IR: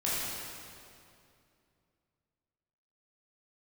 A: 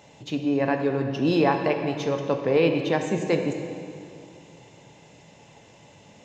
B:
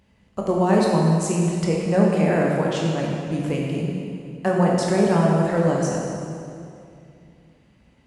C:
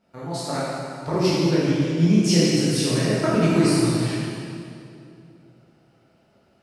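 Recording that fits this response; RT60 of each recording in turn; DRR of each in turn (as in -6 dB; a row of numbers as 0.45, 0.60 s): C; 2.5, 2.5, 2.5 s; 4.5, -3.0, -9.0 dB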